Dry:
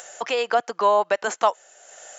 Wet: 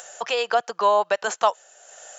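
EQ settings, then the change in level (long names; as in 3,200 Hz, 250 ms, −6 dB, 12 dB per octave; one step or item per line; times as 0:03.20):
dynamic equaliser 4,000 Hz, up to +3 dB, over −37 dBFS, Q 0.96
parametric band 280 Hz −11 dB 0.51 octaves
parametric band 2,100 Hz −5.5 dB 0.22 octaves
0.0 dB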